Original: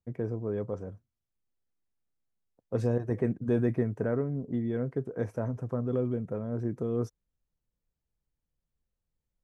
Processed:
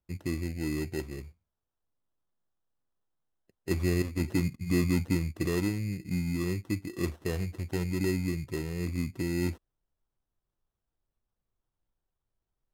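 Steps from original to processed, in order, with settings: sample-rate reducer 3100 Hz, jitter 0%; speed mistake 45 rpm record played at 33 rpm

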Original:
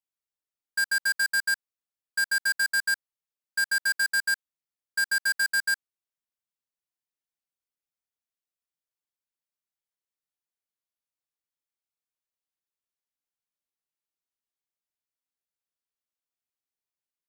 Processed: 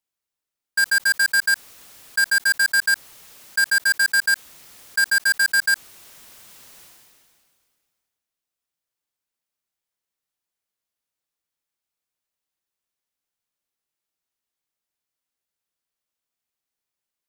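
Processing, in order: sustainer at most 28 dB/s; gain +6.5 dB

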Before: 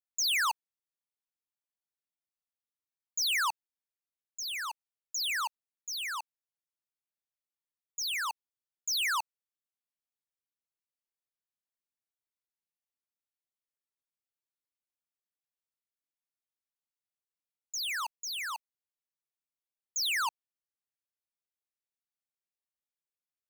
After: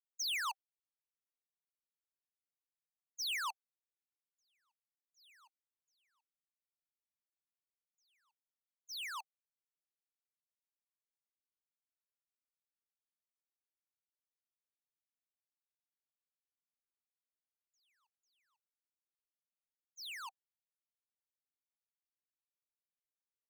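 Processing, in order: gate -29 dBFS, range -53 dB; compressor, threshold -44 dBFS, peak gain reduction 7 dB; rippled Chebyshev high-pass 760 Hz, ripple 3 dB; gain +7.5 dB

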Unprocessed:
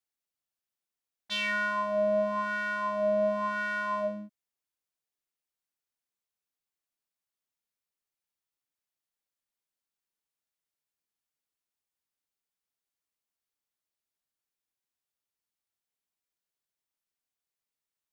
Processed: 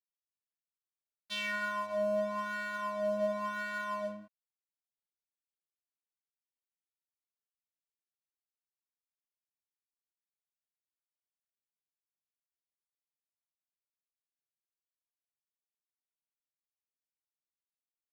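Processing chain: flange 0.15 Hz, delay 7.4 ms, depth 8.3 ms, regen -84%; crossover distortion -50 dBFS

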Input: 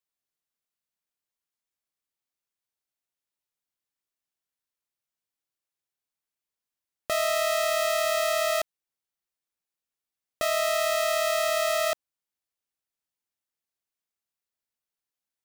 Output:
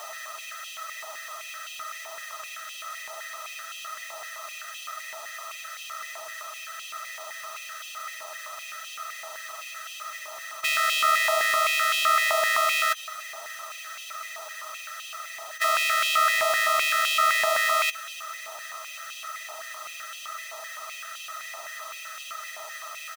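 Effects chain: per-bin compression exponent 0.2; whine 6100 Hz -48 dBFS; on a send: echo 0.196 s -21 dB; on the sum: time stretch by phase-locked vocoder 1.5×; stepped high-pass 7.8 Hz 910–2800 Hz

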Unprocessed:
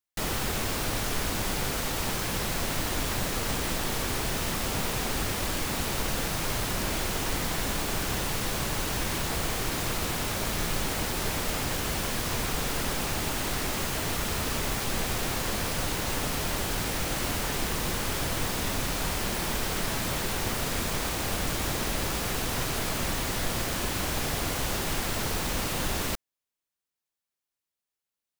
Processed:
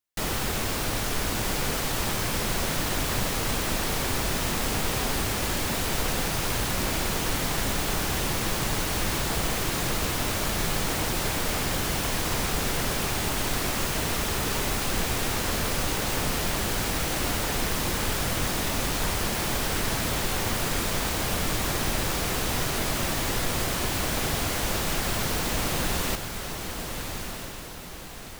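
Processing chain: diffused feedback echo 1.264 s, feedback 44%, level -6.5 dB; gain +1.5 dB

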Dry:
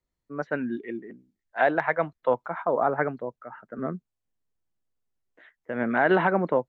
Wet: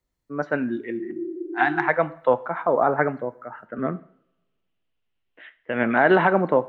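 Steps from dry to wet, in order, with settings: 1.03–1.86 spectral repair 320–710 Hz before; 3.65–5.95 synth low-pass 2900 Hz, resonance Q 3.9; two-slope reverb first 0.53 s, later 1.5 s, from -24 dB, DRR 12.5 dB; gain +4 dB

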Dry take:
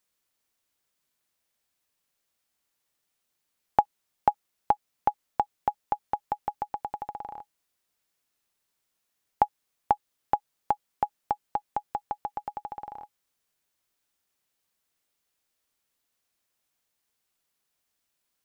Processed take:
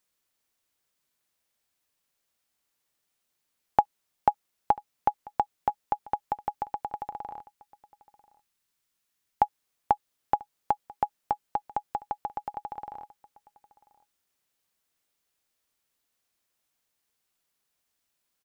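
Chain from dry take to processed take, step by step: 7.4–9.42 bell 570 Hz -5.5 dB 1.6 oct; echo 0.991 s -23.5 dB

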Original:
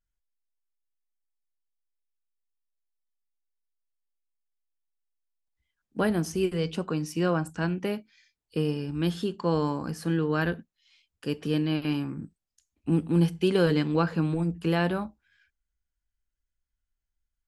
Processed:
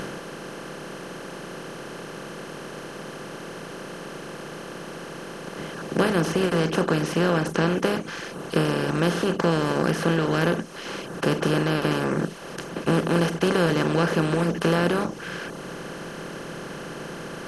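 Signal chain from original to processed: per-bin compression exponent 0.2; reverb removal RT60 0.71 s; gain -2 dB

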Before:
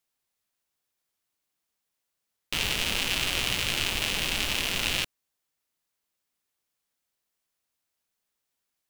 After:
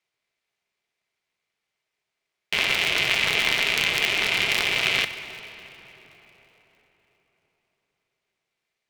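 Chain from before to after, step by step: LPF 2800 Hz 12 dB/oct; tilt +4.5 dB/oct; small resonant body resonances 290/510/2200 Hz, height 13 dB, ringing for 25 ms; on a send at -10 dB: reverb RT60 4.4 s, pre-delay 4 ms; on the sum: polarity switched at an audio rate 130 Hz

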